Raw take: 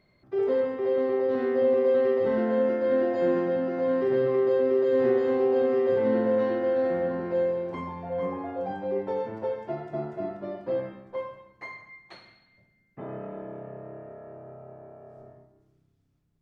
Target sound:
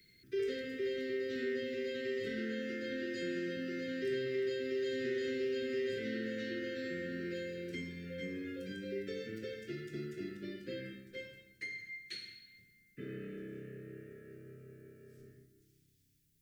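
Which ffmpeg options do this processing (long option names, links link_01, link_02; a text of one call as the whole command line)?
ffmpeg -i in.wav -filter_complex "[0:a]acrossover=split=120|430|1300[link_01][link_02][link_03][link_04];[link_01]acompressor=threshold=-53dB:ratio=4[link_05];[link_02]acompressor=threshold=-36dB:ratio=4[link_06];[link_03]acompressor=threshold=-32dB:ratio=4[link_07];[link_04]acompressor=threshold=-45dB:ratio=4[link_08];[link_05][link_06][link_07][link_08]amix=inputs=4:normalize=0,asuperstop=centerf=850:order=8:qfactor=0.74,crystalizer=i=6.5:c=0,volume=-4.5dB" out.wav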